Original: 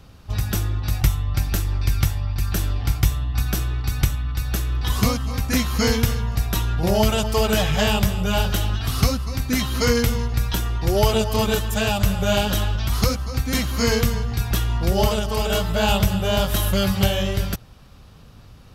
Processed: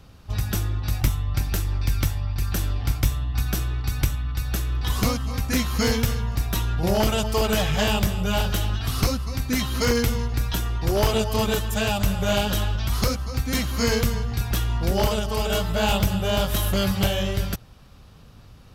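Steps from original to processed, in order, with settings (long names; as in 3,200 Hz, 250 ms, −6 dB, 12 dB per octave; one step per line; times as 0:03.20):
wavefolder on the positive side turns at −13.5 dBFS
level −2 dB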